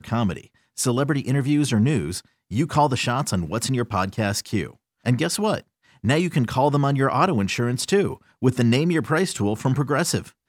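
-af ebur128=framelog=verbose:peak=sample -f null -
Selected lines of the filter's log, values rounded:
Integrated loudness:
  I:         -22.4 LUFS
  Threshold: -32.6 LUFS
Loudness range:
  LRA:         3.0 LU
  Threshold: -42.6 LUFS
  LRA low:   -24.2 LUFS
  LRA high:  -21.2 LUFS
Sample peak:
  Peak:       -5.2 dBFS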